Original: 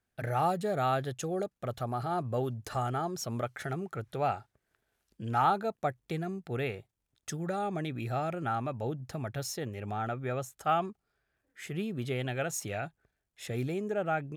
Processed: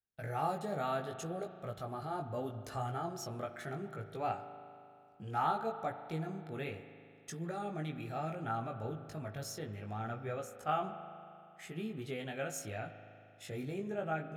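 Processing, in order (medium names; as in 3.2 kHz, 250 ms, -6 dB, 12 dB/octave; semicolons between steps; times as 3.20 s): chorus 0.69 Hz, delay 17.5 ms, depth 2.7 ms; gate -58 dBFS, range -10 dB; spring tank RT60 2.6 s, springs 38 ms, chirp 40 ms, DRR 9.5 dB; trim -3.5 dB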